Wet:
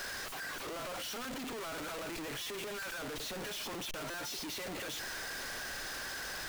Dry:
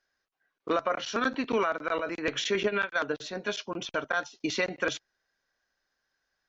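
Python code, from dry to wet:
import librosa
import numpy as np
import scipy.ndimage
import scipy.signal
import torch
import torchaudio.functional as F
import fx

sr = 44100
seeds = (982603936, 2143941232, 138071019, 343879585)

y = np.sign(x) * np.sqrt(np.mean(np.square(x)))
y = fx.buffer_glitch(y, sr, at_s=(2.42, 4.1), block=256, repeats=6)
y = F.gain(torch.from_numpy(y), -8.5).numpy()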